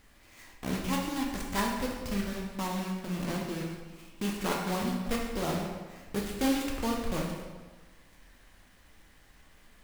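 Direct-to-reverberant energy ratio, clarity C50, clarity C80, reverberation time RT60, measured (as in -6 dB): -1.5 dB, 2.5 dB, 4.5 dB, 1.4 s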